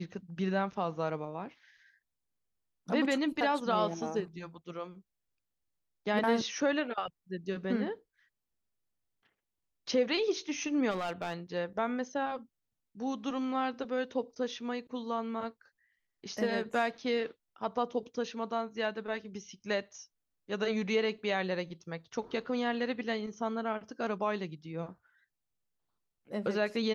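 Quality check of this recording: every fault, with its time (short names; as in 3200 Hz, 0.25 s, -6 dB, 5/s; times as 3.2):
10.9–11.34 clipped -30.5 dBFS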